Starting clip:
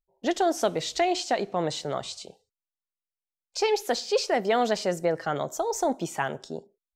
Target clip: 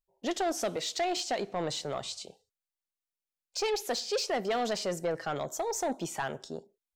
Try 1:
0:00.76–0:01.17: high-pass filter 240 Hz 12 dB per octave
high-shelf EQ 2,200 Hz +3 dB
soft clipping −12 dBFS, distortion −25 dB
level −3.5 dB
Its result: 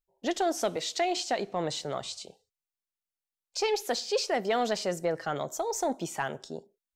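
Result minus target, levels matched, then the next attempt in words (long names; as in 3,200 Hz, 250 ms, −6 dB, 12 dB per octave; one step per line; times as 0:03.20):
soft clipping: distortion −12 dB
0:00.76–0:01.17: high-pass filter 240 Hz 12 dB per octave
high-shelf EQ 2,200 Hz +3 dB
soft clipping −20.5 dBFS, distortion −13 dB
level −3.5 dB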